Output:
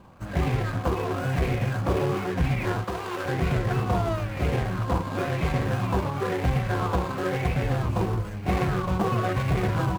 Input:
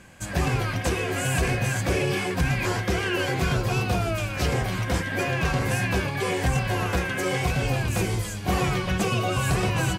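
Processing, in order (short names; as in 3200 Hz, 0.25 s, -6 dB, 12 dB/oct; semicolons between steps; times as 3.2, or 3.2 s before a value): median filter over 25 samples; 2.84–3.26 low shelf 440 Hz -10.5 dB; LFO bell 1 Hz 990–2200 Hz +10 dB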